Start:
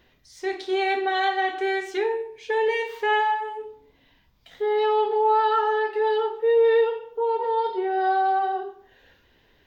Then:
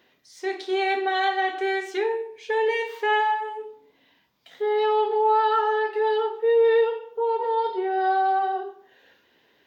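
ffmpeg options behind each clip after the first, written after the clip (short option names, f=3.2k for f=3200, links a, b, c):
-af "highpass=220"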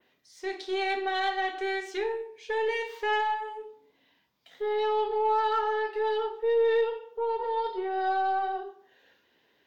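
-af "adynamicequalizer=threshold=0.00501:dfrequency=5300:dqfactor=1:tfrequency=5300:tqfactor=1:attack=5:release=100:ratio=0.375:range=2:mode=boostabove:tftype=bell,aeval=exprs='0.282*(cos(1*acos(clip(val(0)/0.282,-1,1)))-cos(1*PI/2))+0.00708*(cos(6*acos(clip(val(0)/0.282,-1,1)))-cos(6*PI/2))':c=same,volume=-5.5dB"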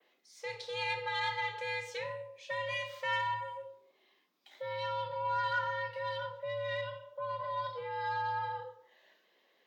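-filter_complex "[0:a]acrossover=split=160|900|1600[a][b][c][d];[b]acompressor=threshold=-38dB:ratio=6[e];[a][e][c][d]amix=inputs=4:normalize=0,afreqshift=110,volume=-3dB"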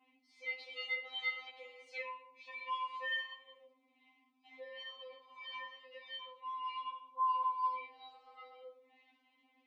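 -filter_complex "[0:a]asplit=3[a][b][c];[a]bandpass=f=300:t=q:w=8,volume=0dB[d];[b]bandpass=f=870:t=q:w=8,volume=-6dB[e];[c]bandpass=f=2.24k:t=q:w=8,volume=-9dB[f];[d][e][f]amix=inputs=3:normalize=0,afftfilt=real='re*3.46*eq(mod(b,12),0)':imag='im*3.46*eq(mod(b,12),0)':win_size=2048:overlap=0.75,volume=17.5dB"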